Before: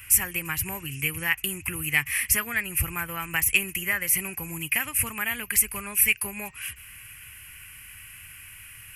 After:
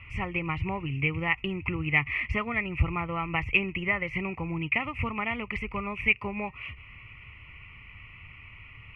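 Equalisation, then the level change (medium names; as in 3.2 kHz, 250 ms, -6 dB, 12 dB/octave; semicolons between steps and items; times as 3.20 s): Butterworth band-stop 1.6 kHz, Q 2.2; low-pass 2.2 kHz 24 dB/octave; +5.0 dB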